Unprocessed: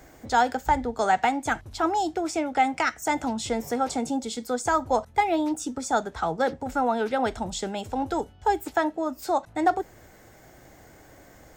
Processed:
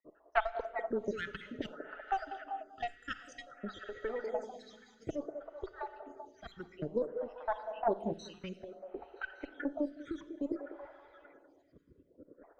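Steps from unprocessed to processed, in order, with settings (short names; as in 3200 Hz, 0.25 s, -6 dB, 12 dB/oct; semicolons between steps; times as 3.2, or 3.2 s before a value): random spectral dropouts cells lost 77%; low-pass opened by the level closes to 1200 Hz, open at -26.5 dBFS; gate -53 dBFS, range -8 dB; tone controls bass -12 dB, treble -14 dB; notch 810 Hz, Q 12; compressor 2:1, threshold -44 dBFS, peak gain reduction 13 dB; added harmonics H 4 -10 dB, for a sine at -14 dBFS; delay with a stepping band-pass 0.178 s, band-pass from 510 Hz, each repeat 0.7 oct, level -5 dB; Schroeder reverb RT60 2.6 s, combs from 33 ms, DRR 11.5 dB; rotary speaker horn 5 Hz, later 0.65 Hz, at 2.26; speed mistake 48 kHz file played as 44.1 kHz; photocell phaser 0.57 Hz; gain +9 dB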